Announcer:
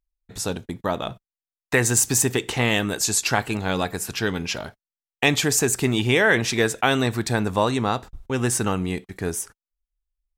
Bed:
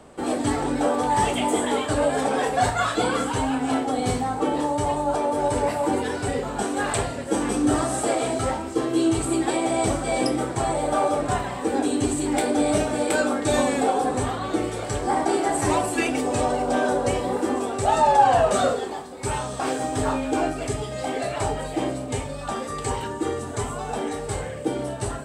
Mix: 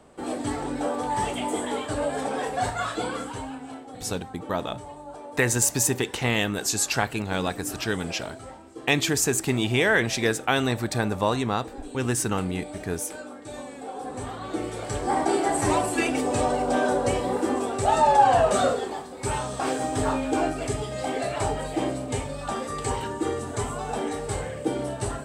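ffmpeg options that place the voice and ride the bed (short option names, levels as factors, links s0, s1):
-filter_complex "[0:a]adelay=3650,volume=0.708[s0];[1:a]volume=3.35,afade=t=out:st=2.9:d=0.87:silence=0.266073,afade=t=in:st=13.82:d=1.43:silence=0.158489[s1];[s0][s1]amix=inputs=2:normalize=0"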